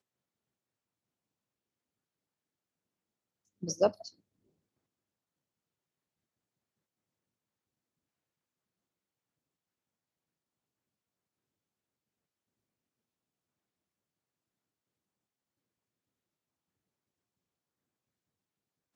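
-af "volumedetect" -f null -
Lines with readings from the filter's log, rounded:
mean_volume: -46.5 dB
max_volume: -13.1 dB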